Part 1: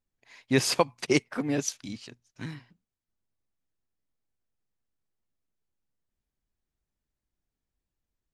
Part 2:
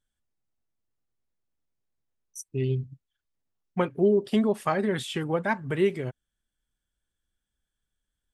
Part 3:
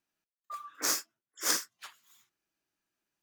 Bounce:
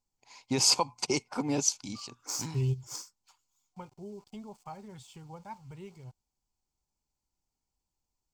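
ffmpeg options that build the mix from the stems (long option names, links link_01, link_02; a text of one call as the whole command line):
ffmpeg -i stem1.wav -i stem2.wav -i stem3.wav -filter_complex "[0:a]volume=-2dB,asplit=2[link_01][link_02];[1:a]asubboost=boost=9.5:cutoff=100,aeval=exprs='val(0)*gte(abs(val(0)),0.01)':channel_layout=same,volume=-6dB[link_03];[2:a]bandreject=frequency=60:width_type=h:width=6,bandreject=frequency=120:width_type=h:width=6,bandreject=frequency=180:width_type=h:width=6,asoftclip=type=hard:threshold=-11.5dB,adelay=1450,volume=-12.5dB,afade=type=out:start_time=2.25:duration=0.52:silence=0.446684[link_04];[link_02]apad=whole_len=367453[link_05];[link_03][link_05]sidechaingate=range=-15dB:threshold=-58dB:ratio=16:detection=peak[link_06];[link_01][link_04]amix=inputs=2:normalize=0,alimiter=limit=-19dB:level=0:latency=1:release=35,volume=0dB[link_07];[link_06][link_07]amix=inputs=2:normalize=0,superequalizer=9b=2.82:11b=0.355:14b=2.51:15b=2.82" out.wav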